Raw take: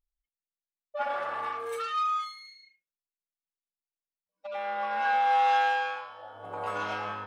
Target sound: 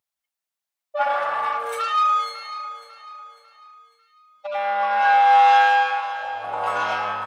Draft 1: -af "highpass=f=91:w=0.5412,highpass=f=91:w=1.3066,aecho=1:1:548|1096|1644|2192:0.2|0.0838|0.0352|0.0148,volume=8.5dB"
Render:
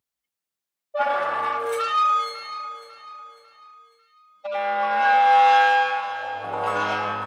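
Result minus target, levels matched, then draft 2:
500 Hz band +3.0 dB
-af "highpass=f=91:w=0.5412,highpass=f=91:w=1.3066,lowshelf=f=510:t=q:w=1.5:g=-6.5,aecho=1:1:548|1096|1644|2192:0.2|0.0838|0.0352|0.0148,volume=8.5dB"

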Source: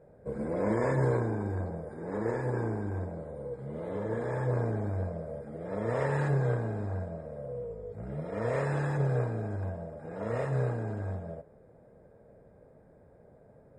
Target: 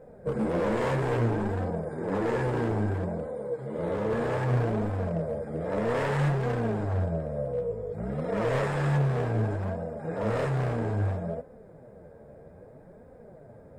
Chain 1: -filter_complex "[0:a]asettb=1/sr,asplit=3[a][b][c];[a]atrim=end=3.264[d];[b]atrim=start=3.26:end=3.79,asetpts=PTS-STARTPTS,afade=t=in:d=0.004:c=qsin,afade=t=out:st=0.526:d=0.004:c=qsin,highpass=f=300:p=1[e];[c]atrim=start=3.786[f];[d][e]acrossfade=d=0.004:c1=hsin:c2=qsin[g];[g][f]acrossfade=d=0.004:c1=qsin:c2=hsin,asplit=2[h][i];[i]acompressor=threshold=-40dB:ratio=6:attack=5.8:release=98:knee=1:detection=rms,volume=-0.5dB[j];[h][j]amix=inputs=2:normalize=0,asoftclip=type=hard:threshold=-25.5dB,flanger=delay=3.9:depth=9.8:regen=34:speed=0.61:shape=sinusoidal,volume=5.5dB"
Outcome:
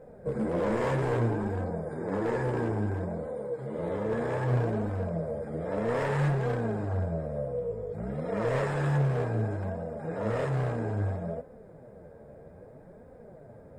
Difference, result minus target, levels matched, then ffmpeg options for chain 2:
compressor: peak gain reduction +10 dB
-filter_complex "[0:a]asettb=1/sr,asplit=3[a][b][c];[a]atrim=end=3.264[d];[b]atrim=start=3.26:end=3.79,asetpts=PTS-STARTPTS,afade=t=in:d=0.004:c=qsin,afade=t=out:st=0.526:d=0.004:c=qsin,highpass=f=300:p=1[e];[c]atrim=start=3.786[f];[d][e]acrossfade=d=0.004:c1=hsin:c2=qsin[g];[g][f]acrossfade=d=0.004:c1=qsin:c2=hsin,asplit=2[h][i];[i]acompressor=threshold=-28dB:ratio=6:attack=5.8:release=98:knee=1:detection=rms,volume=-0.5dB[j];[h][j]amix=inputs=2:normalize=0,asoftclip=type=hard:threshold=-25.5dB,flanger=delay=3.9:depth=9.8:regen=34:speed=0.61:shape=sinusoidal,volume=5.5dB"

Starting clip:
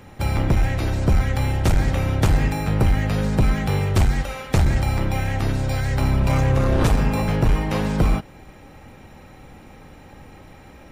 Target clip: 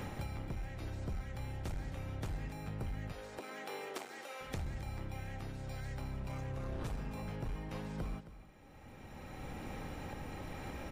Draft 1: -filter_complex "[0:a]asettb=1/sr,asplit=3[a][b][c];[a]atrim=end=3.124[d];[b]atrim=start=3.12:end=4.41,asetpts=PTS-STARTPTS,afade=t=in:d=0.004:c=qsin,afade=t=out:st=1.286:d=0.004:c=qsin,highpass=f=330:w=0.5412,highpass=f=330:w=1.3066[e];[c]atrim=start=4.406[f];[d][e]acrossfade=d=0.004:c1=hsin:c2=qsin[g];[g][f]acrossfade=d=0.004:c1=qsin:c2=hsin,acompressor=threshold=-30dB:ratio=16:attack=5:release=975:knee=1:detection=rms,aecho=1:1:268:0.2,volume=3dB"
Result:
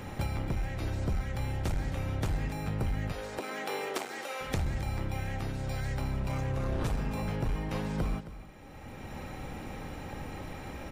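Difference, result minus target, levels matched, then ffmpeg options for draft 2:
compressor: peak gain reduction -9 dB
-filter_complex "[0:a]asettb=1/sr,asplit=3[a][b][c];[a]atrim=end=3.124[d];[b]atrim=start=3.12:end=4.41,asetpts=PTS-STARTPTS,afade=t=in:d=0.004:c=qsin,afade=t=out:st=1.286:d=0.004:c=qsin,highpass=f=330:w=0.5412,highpass=f=330:w=1.3066[e];[c]atrim=start=4.406[f];[d][e]acrossfade=d=0.004:c1=hsin:c2=qsin[g];[g][f]acrossfade=d=0.004:c1=qsin:c2=hsin,acompressor=threshold=-39.5dB:ratio=16:attack=5:release=975:knee=1:detection=rms,aecho=1:1:268:0.2,volume=3dB"

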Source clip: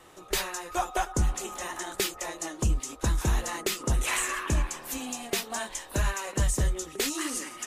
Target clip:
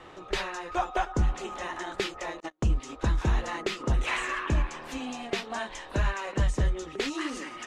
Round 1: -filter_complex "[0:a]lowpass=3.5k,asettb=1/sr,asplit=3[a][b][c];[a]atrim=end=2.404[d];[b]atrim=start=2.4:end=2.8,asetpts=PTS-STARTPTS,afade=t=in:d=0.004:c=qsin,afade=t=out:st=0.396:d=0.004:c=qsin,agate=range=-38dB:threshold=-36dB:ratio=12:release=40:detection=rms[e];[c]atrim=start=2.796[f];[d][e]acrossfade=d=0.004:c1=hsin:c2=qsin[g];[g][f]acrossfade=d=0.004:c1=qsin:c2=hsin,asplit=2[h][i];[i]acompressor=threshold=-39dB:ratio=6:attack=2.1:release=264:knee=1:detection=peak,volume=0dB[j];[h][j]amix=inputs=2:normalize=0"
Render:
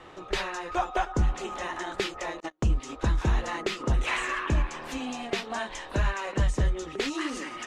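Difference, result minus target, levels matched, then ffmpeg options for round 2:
compressor: peak gain reduction -7 dB
-filter_complex "[0:a]lowpass=3.5k,asettb=1/sr,asplit=3[a][b][c];[a]atrim=end=2.404[d];[b]atrim=start=2.4:end=2.8,asetpts=PTS-STARTPTS,afade=t=in:d=0.004:c=qsin,afade=t=out:st=0.396:d=0.004:c=qsin,agate=range=-38dB:threshold=-36dB:ratio=12:release=40:detection=rms[e];[c]atrim=start=2.796[f];[d][e]acrossfade=d=0.004:c1=hsin:c2=qsin[g];[g][f]acrossfade=d=0.004:c1=qsin:c2=hsin,asplit=2[h][i];[i]acompressor=threshold=-47.5dB:ratio=6:attack=2.1:release=264:knee=1:detection=peak,volume=0dB[j];[h][j]amix=inputs=2:normalize=0"

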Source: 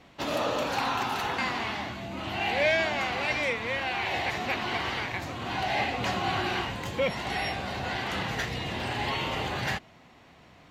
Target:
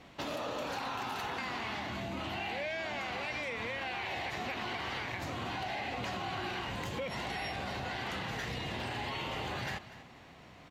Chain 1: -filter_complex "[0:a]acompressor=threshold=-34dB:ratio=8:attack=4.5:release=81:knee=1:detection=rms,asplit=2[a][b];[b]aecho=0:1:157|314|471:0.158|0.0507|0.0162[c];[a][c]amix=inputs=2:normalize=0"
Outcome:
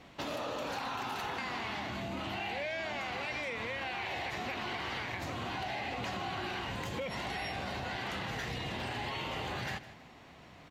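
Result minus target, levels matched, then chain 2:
echo 85 ms early
-filter_complex "[0:a]acompressor=threshold=-34dB:ratio=8:attack=4.5:release=81:knee=1:detection=rms,asplit=2[a][b];[b]aecho=0:1:242|484|726:0.158|0.0507|0.0162[c];[a][c]amix=inputs=2:normalize=0"

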